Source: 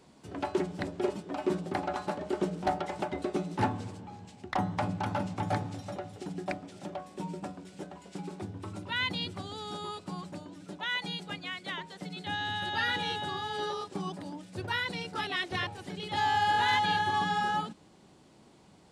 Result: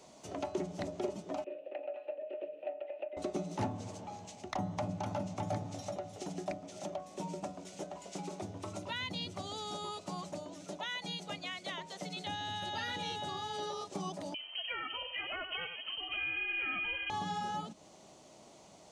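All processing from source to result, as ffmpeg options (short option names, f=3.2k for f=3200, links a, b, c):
-filter_complex "[0:a]asettb=1/sr,asplit=3[a][b][c];[a]atrim=end=1.444[d];[b]atrim=start=1.44:end=3.17,asetpts=PTS-STARTPTS,afade=t=in:d=0.004:c=qsin,afade=t=out:st=1.726:d=0.004:c=qsin,asplit=3[e][f][g];[e]bandpass=f=530:t=q:w=8,volume=0dB[h];[f]bandpass=f=1.84k:t=q:w=8,volume=-6dB[i];[g]bandpass=f=2.48k:t=q:w=8,volume=-9dB[j];[h][i][j]amix=inputs=3:normalize=0,highpass=f=280:w=0.5412,highpass=f=280:w=1.3066,equalizer=f=290:t=q:w=4:g=7,equalizer=f=430:t=q:w=4:g=-5,equalizer=f=610:t=q:w=4:g=4,equalizer=f=1.1k:t=q:w=4:g=10,equalizer=f=1.8k:t=q:w=4:g=-5,equalizer=f=2.6k:t=q:w=4:g=9,lowpass=f=3.2k:w=0.5412,lowpass=f=3.2k:w=1.3066[k];[c]atrim=start=3.166[l];[d][k]acrossfade=d=0.004:c1=hsin:c2=qsin[m];[m][l]acrossfade=d=0.004:c1=qsin:c2=hsin,asettb=1/sr,asplit=3[n][o][p];[n]atrim=end=14.344[q];[o]atrim=start=14.34:end=17.1,asetpts=PTS-STARTPTS,afade=t=in:d=0.004:c=qsin,afade=t=out:st=2.756:d=0.004:c=qsin,lowpass=f=2.8k:t=q:w=0.5098,lowpass=f=2.8k:t=q:w=0.6013,lowpass=f=2.8k:t=q:w=0.9,lowpass=f=2.8k:t=q:w=2.563,afreqshift=-3300,aecho=1:1:90:0.299,atrim=end_sample=121716[r];[p]atrim=start=17.096[s];[q][r]acrossfade=d=0.004:c1=hsin:c2=qsin[t];[t][s]acrossfade=d=0.004:c1=qsin:c2=hsin,equalizer=f=630:t=o:w=0.33:g=11,equalizer=f=1.6k:t=o:w=0.33:g=-7,equalizer=f=6.3k:t=o:w=0.33:g=10,acrossover=split=300[u][v];[v]acompressor=threshold=-41dB:ratio=3[w];[u][w]amix=inputs=2:normalize=0,lowshelf=f=350:g=-8.5,volume=2.5dB"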